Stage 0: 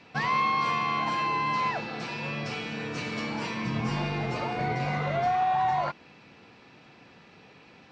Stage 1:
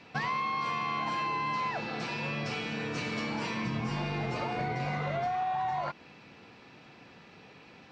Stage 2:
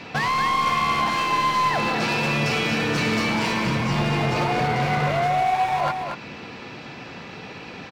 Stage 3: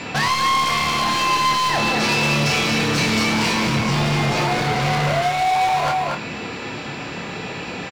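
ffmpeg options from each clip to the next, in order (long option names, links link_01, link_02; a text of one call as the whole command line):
ffmpeg -i in.wav -af "acompressor=threshold=-29dB:ratio=6" out.wav
ffmpeg -i in.wav -filter_complex "[0:a]asplit=2[link_01][link_02];[link_02]alimiter=level_in=5.5dB:limit=-24dB:level=0:latency=1:release=308,volume=-5.5dB,volume=2.5dB[link_03];[link_01][link_03]amix=inputs=2:normalize=0,asoftclip=type=hard:threshold=-27dB,aecho=1:1:233:0.473,volume=7.5dB" out.wav
ffmpeg -i in.wav -filter_complex "[0:a]acrossover=split=3700[link_01][link_02];[link_01]asoftclip=type=tanh:threshold=-26.5dB[link_03];[link_03][link_02]amix=inputs=2:normalize=0,aeval=exprs='val(0)+0.00251*sin(2*PI*7200*n/s)':channel_layout=same,asplit=2[link_04][link_05];[link_05]adelay=28,volume=-6dB[link_06];[link_04][link_06]amix=inputs=2:normalize=0,volume=7.5dB" out.wav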